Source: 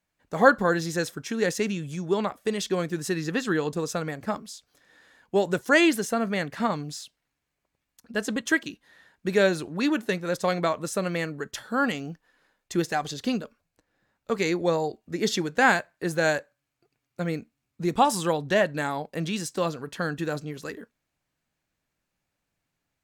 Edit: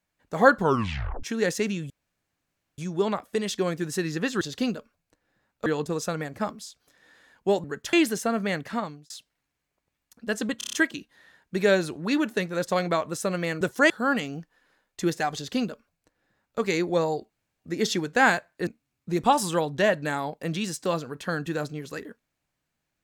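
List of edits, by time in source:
0.59 tape stop 0.64 s
1.9 insert room tone 0.88 s
5.51–5.8 swap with 11.33–11.62
6.49–6.97 fade out
8.45 stutter 0.03 s, 6 plays
13.07–14.32 copy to 3.53
15.02 insert room tone 0.30 s
16.09–17.39 cut

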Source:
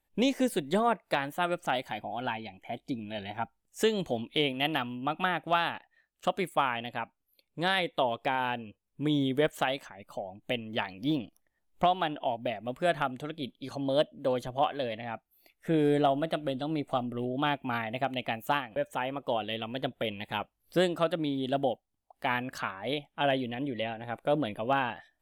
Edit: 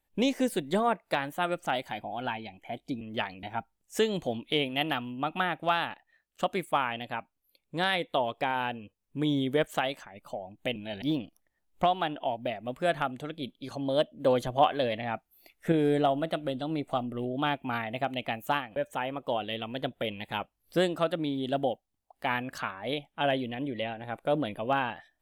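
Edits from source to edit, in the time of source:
3.01–3.27 swap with 10.6–11.02
14.2–15.72 gain +4.5 dB

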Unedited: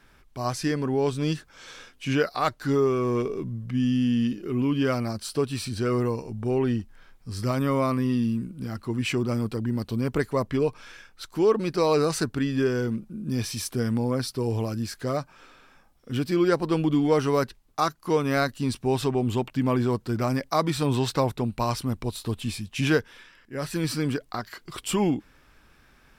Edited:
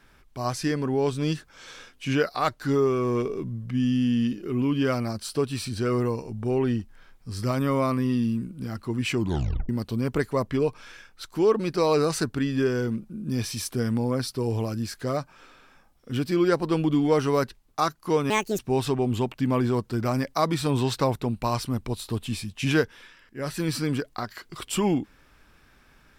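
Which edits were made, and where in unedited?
9.17 tape stop 0.52 s
18.3–18.75 speed 155%

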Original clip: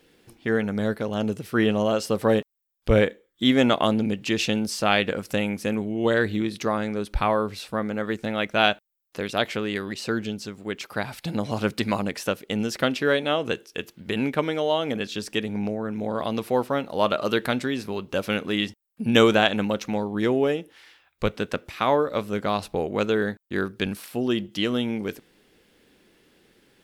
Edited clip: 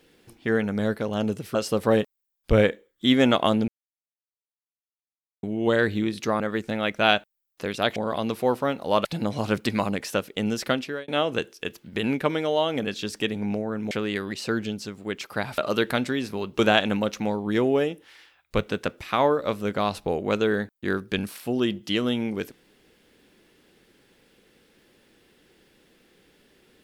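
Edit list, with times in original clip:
1.55–1.93 cut
4.06–5.81 mute
6.78–7.95 cut
9.51–11.18 swap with 16.04–17.13
12.79–13.21 fade out
18.14–19.27 cut

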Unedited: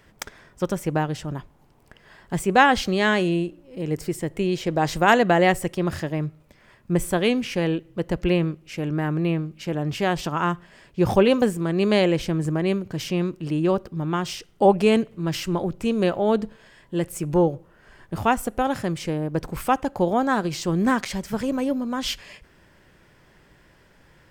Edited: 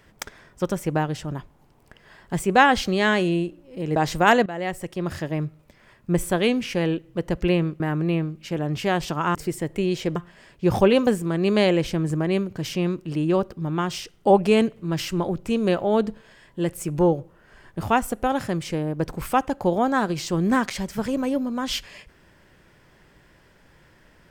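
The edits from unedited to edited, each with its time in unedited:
3.96–4.77 move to 10.51
5.27–6.17 fade in, from -17.5 dB
8.61–8.96 cut

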